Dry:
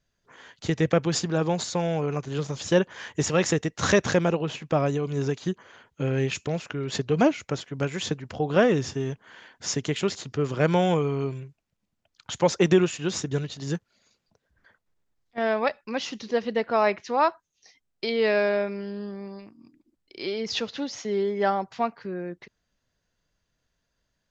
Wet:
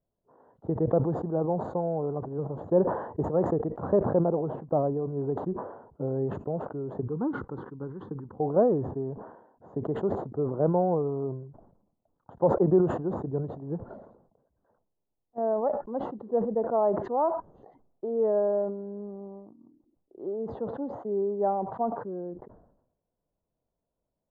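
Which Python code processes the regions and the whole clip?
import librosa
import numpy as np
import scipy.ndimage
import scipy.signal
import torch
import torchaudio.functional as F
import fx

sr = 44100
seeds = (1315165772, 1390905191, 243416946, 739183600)

y = fx.chain(x, sr, fx.low_shelf(hz=130.0, db=-9.0),
    fx.fixed_phaser(hz=2400.0, stages=6), at=(7.01, 8.4))
y = scipy.signal.sosfilt(scipy.signal.cheby2(4, 50, 2200.0, 'lowpass', fs=sr, output='sos'), y)
y = fx.low_shelf(y, sr, hz=210.0, db=-10.0)
y = fx.sustainer(y, sr, db_per_s=70.0)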